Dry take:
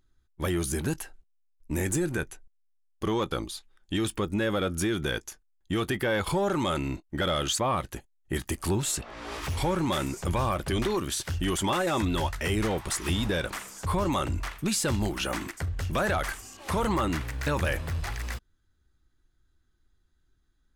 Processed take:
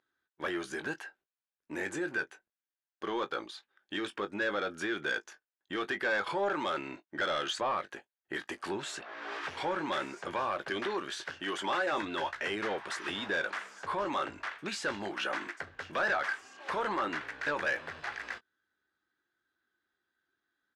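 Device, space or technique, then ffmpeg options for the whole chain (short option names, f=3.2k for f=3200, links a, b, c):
intercom: -filter_complex "[0:a]highpass=400,lowpass=3.8k,equalizer=f=1.6k:t=o:w=0.34:g=8,asoftclip=type=tanh:threshold=-21dB,asplit=2[a][b];[b]adelay=20,volume=-11dB[c];[a][c]amix=inputs=2:normalize=0,asettb=1/sr,asplit=3[d][e][f];[d]atrim=end=11.314[g];[e]atrim=start=11.31:end=11.93,asetpts=PTS-STARTPTS,afade=t=in:d=0.004:c=qsin,afade=t=out:st=0.616:d=0.004:c=qsin,highpass=f=160:p=1[h];[f]atrim=start=11.926[i];[g][h]acrossfade=d=0.004:c1=hsin:c2=qsin[j];[j][i]acrossfade=d=0.004:c1=qsin:c2=hsin,volume=-2.5dB"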